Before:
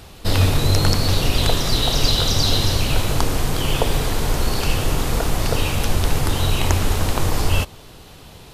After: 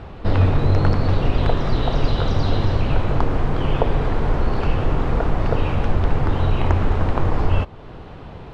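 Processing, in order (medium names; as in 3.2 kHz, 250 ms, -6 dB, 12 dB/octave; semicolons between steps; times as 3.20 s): low-pass 1.6 kHz 12 dB/octave; in parallel at +2.5 dB: compression, threshold -30 dBFS, peak gain reduction 18 dB; on the sum: trim -1 dB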